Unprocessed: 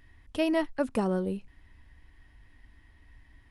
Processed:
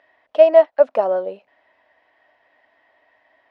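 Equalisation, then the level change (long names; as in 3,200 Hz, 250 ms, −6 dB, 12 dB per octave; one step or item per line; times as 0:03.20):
high-pass with resonance 620 Hz, resonance Q 6.9
high-frequency loss of the air 210 metres
+5.0 dB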